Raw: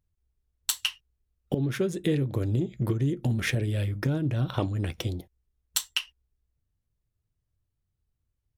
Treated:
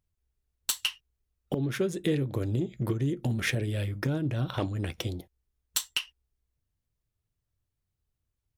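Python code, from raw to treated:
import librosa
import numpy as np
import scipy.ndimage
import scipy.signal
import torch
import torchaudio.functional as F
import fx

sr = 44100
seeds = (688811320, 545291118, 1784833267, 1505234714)

y = fx.low_shelf(x, sr, hz=220.0, db=-4.0)
y = np.clip(10.0 ** (17.5 / 20.0) * y, -1.0, 1.0) / 10.0 ** (17.5 / 20.0)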